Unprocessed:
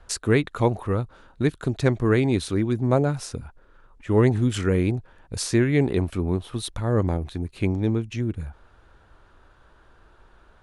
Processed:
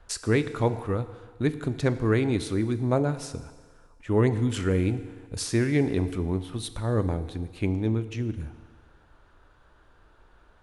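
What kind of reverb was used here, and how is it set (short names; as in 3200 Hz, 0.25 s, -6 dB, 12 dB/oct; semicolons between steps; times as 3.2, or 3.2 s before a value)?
FDN reverb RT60 1.6 s, low-frequency decay 0.8×, high-frequency decay 0.95×, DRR 11 dB; gain -3.5 dB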